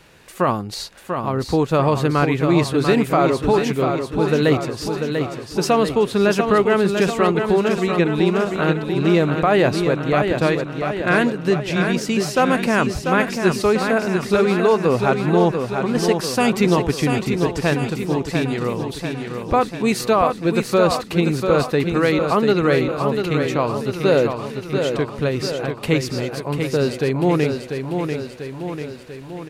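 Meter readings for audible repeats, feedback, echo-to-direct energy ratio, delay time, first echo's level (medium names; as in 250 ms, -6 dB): 7, 58%, -4.0 dB, 692 ms, -6.0 dB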